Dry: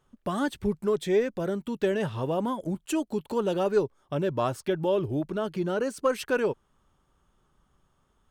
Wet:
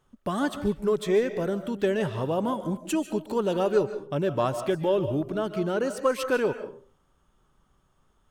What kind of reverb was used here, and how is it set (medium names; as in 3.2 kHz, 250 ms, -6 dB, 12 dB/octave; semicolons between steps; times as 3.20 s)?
algorithmic reverb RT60 0.43 s, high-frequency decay 0.6×, pre-delay 105 ms, DRR 10 dB; trim +1 dB